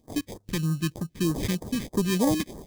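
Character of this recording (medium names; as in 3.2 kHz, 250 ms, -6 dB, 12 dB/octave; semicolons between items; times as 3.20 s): aliases and images of a low sample rate 1.4 kHz, jitter 0%; phasing stages 2, 3.2 Hz, lowest notch 680–2500 Hz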